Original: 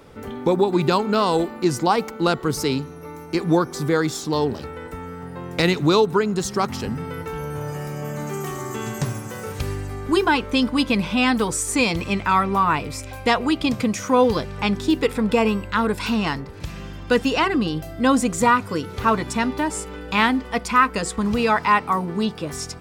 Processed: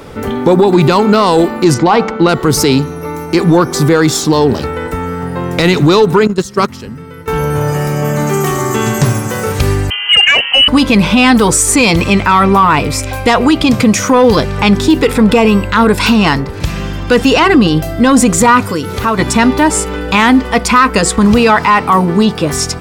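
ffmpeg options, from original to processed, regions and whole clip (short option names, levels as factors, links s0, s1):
-filter_complex "[0:a]asettb=1/sr,asplit=3[s0][s1][s2];[s0]atrim=end=1.744[s3];[s1]atrim=start=1.74:end=2.29,asetpts=PTS-STARTPTS,afade=t=in:d=0.004:c=qsin,afade=t=out:st=0.546:d=0.004:c=qsin,lowpass=3900,bandreject=f=97.11:t=h:w=4,bandreject=f=194.22:t=h:w=4,bandreject=f=291.33:t=h:w=4,bandreject=f=388.44:t=h:w=4,bandreject=f=485.55:t=h:w=4,bandreject=f=582.66:t=h:w=4,bandreject=f=679.77:t=h:w=4,bandreject=f=776.88:t=h:w=4,bandreject=f=873.99:t=h:w=4,bandreject=f=971.1:t=h:w=4,bandreject=f=1068.21:t=h:w=4,bandreject=f=1165.32:t=h:w=4,bandreject=f=1262.43:t=h:w=4,bandreject=f=1359.54:t=h:w=4,bandreject=f=1456.65:t=h:w=4,bandreject=f=1553.76:t=h:w=4,bandreject=f=1650.87:t=h:w=4,bandreject=f=1747.98:t=h:w=4[s4];[s2]atrim=start=2.286[s5];[s3][s4]acrossfade=d=0.004:c1=hsin:c2=qsin[s6];[s6][s5]acrossfade=d=0.004:c1=qsin:c2=hsin,asettb=1/sr,asplit=3[s7][s8][s9];[s7]atrim=end=6.274[s10];[s8]atrim=start=6.27:end=7.28,asetpts=PTS-STARTPTS,afade=t=in:d=0.004:c=qsin,afade=t=out:st=1.006:d=0.004:c=qsin,agate=range=0.178:threshold=0.0794:ratio=16:release=100:detection=peak,equalizer=f=780:t=o:w=0.35:g=-8.5[s11];[s9]atrim=start=7.276[s12];[s10][s11]acrossfade=d=0.004:c1=hsin:c2=qsin[s13];[s13][s12]acrossfade=d=0.004:c1=qsin:c2=hsin,asettb=1/sr,asplit=3[s14][s15][s16];[s14]atrim=end=9.904[s17];[s15]atrim=start=9.9:end=10.68,asetpts=PTS-STARTPTS,afade=t=in:d=0.004:c=qsin,afade=t=out:st=0.776:d=0.004:c=qsin,bandreject=f=50:t=h:w=6,bandreject=f=100:t=h:w=6,bandreject=f=150:t=h:w=6,bandreject=f=200:t=h:w=6,bandreject=f=250:t=h:w=6,bandreject=f=300:t=h:w=6,bandreject=f=350:t=h:w=6,lowpass=f=2700:t=q:w=0.5098,lowpass=f=2700:t=q:w=0.6013,lowpass=f=2700:t=q:w=0.9,lowpass=f=2700:t=q:w=2.563,afreqshift=-3200[s18];[s16]atrim=start=10.676[s19];[s17][s18]acrossfade=d=0.004:c1=hsin:c2=qsin[s20];[s20][s19]acrossfade=d=0.004:c1=qsin:c2=hsin,asettb=1/sr,asplit=3[s21][s22][s23];[s21]atrim=end=18.624[s24];[s22]atrim=start=18.62:end=19.19,asetpts=PTS-STARTPTS,afade=t=in:d=0.004:c=qsin,afade=t=out:st=0.566:d=0.004:c=qsin,highshelf=f=7800:g=7,acompressor=threshold=0.0251:ratio=2:attack=3.2:release=140:knee=1:detection=peak[s25];[s23]atrim=start=19.186[s26];[s24][s25]acrossfade=d=0.004:c1=hsin:c2=qsin[s27];[s27][s26]acrossfade=d=0.004:c1=qsin:c2=hsin,acontrast=88,alimiter=limit=0.355:level=0:latency=1:release=25,volume=2.51"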